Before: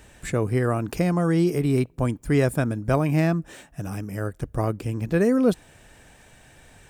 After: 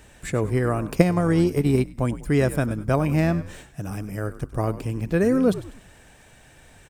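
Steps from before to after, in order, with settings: frequency-shifting echo 98 ms, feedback 42%, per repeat -76 Hz, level -14 dB; 0.95–1.98 s: transient shaper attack +9 dB, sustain -6 dB

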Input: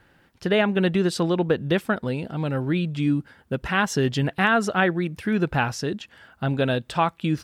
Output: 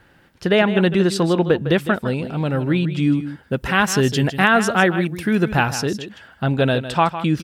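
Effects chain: 3.56–5.82 s: treble shelf 8.1 kHz +9 dB; delay 156 ms -12 dB; trim +4.5 dB

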